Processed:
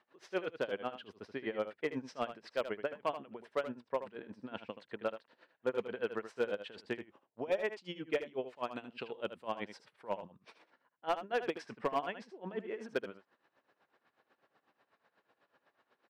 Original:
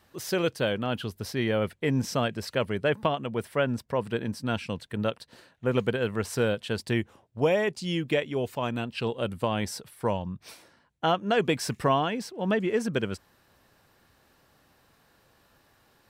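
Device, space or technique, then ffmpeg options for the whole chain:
helicopter radio: -filter_complex "[0:a]asettb=1/sr,asplit=3[a][b][c];[a]atrim=end=8.694[d];[b]atrim=start=8.69:end=9.48,asetpts=PTS-STARTPTS,afade=t=in:d=0.004:c=qsin,afade=t=out:st=0.786:d=0.004:c=qsin,aemphasis=mode=production:type=50kf[e];[c]atrim=start=9.476[f];[d][e]acrossfade=d=0.004:c1=hsin:c2=qsin[g];[g][f]acrossfade=d=0.004:c1=qsin:c2=hsin,highpass=330,lowpass=2.6k,aeval=exprs='val(0)*pow(10,-22*(0.5-0.5*cos(2*PI*8.1*n/s))/20)':c=same,asoftclip=type=hard:threshold=-21.5dB,aecho=1:1:78:0.282,volume=-3dB"

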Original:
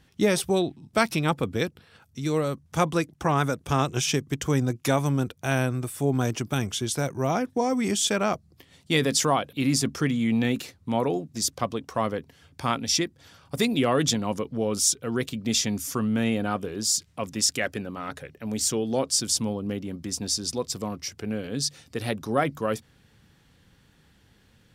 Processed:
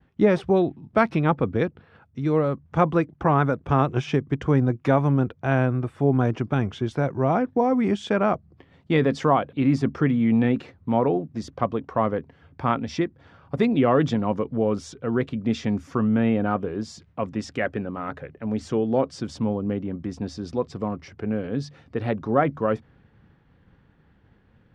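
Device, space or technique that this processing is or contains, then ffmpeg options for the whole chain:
hearing-loss simulation: -af "lowpass=1.6k,agate=range=-33dB:threshold=-57dB:ratio=3:detection=peak,volume=4dB"

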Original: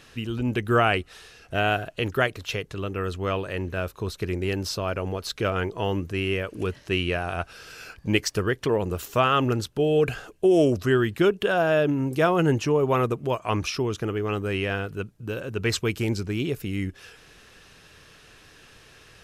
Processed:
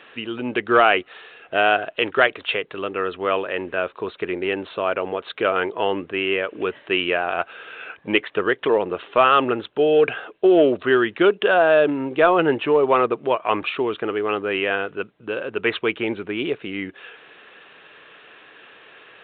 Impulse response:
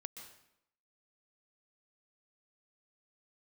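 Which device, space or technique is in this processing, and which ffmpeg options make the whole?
telephone: -filter_complex "[0:a]asettb=1/sr,asplit=3[a][b][c];[a]atrim=end=1.954[d];[b]atrim=start=1.95:end=2.58,asetpts=PTS-STARTPTS,afade=t=in:d=0.004:c=qsin,afade=t=out:st=0.626:d=0.004:c=qsin,highshelf=f=2.3k:g=4.5[e];[c]atrim=start=2.576[f];[d][e]acrossfade=d=0.004:c1=hsin:c2=qsin[g];[g][f]acrossfade=d=0.004:c1=qsin:c2=hsin,highpass=380,lowpass=3.5k,asoftclip=type=tanh:threshold=-10dB,volume=7.5dB" -ar 8000 -c:a pcm_alaw

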